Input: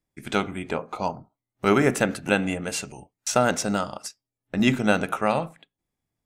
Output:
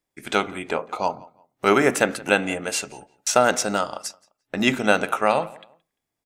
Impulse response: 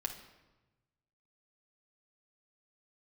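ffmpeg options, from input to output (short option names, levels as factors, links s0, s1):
-filter_complex "[0:a]bass=f=250:g=-11,treble=f=4000:g=0,asplit=2[s0][s1];[s1]adelay=173,lowpass=f=3200:p=1,volume=0.0794,asplit=2[s2][s3];[s3]adelay=173,lowpass=f=3200:p=1,volume=0.27[s4];[s0][s2][s4]amix=inputs=3:normalize=0,volume=1.58"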